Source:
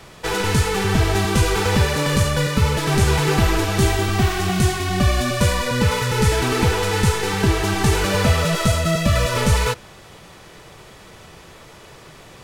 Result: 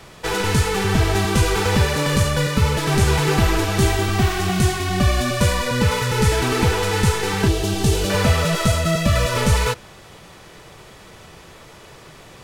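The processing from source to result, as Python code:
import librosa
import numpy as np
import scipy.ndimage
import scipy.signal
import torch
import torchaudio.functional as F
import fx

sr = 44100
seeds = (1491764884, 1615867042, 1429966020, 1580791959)

y = fx.band_shelf(x, sr, hz=1400.0, db=-9.5, octaves=1.7, at=(7.48, 8.1))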